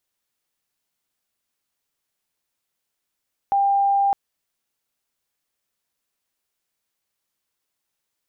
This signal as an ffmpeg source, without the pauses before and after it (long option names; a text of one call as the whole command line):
ffmpeg -f lavfi -i "aevalsrc='0.168*sin(2*PI*796*t)':duration=0.61:sample_rate=44100" out.wav